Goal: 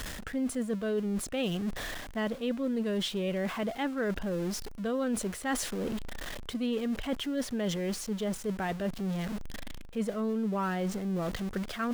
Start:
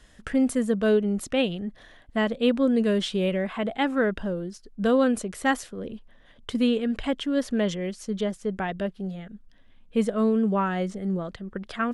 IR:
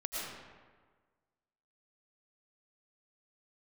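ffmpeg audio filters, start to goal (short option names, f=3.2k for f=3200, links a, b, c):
-af "aeval=exprs='val(0)+0.5*0.0188*sgn(val(0))':c=same,areverse,acompressor=threshold=-32dB:ratio=4,areverse,volume=1.5dB"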